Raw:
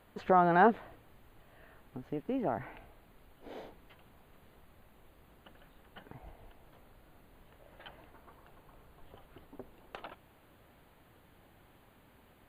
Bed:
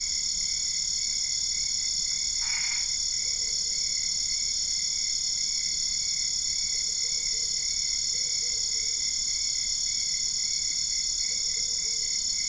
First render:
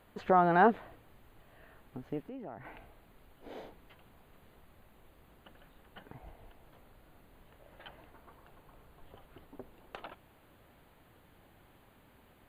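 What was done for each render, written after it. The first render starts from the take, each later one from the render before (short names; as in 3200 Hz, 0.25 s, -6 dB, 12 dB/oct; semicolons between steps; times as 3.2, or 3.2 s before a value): 2.22–2.65 compressor 2:1, threshold -50 dBFS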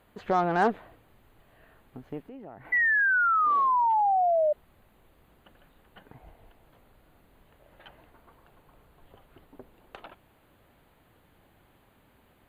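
added harmonics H 8 -29 dB, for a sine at -12 dBFS; 2.72–4.53 painted sound fall 590–2000 Hz -23 dBFS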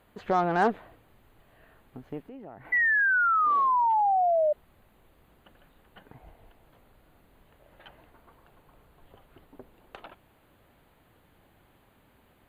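nothing audible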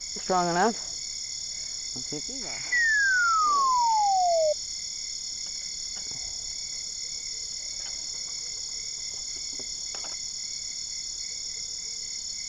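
add bed -6.5 dB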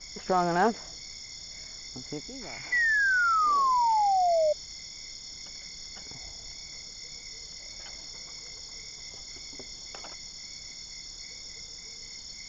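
air absorption 150 m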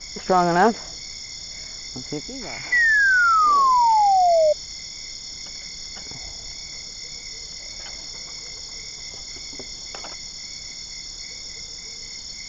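gain +7.5 dB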